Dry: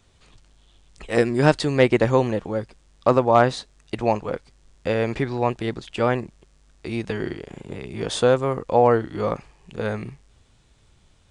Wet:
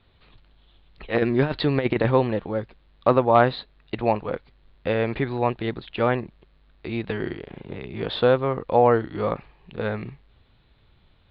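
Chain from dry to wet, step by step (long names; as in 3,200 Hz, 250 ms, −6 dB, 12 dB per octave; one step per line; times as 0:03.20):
elliptic low-pass filter 4,100 Hz, stop band 40 dB
0:01.14–0:02.11: compressor whose output falls as the input rises −19 dBFS, ratio −0.5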